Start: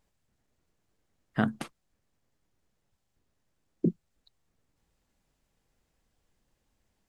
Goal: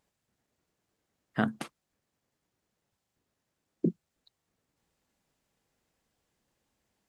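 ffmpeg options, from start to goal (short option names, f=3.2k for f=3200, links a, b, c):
-af "highpass=f=150:p=1"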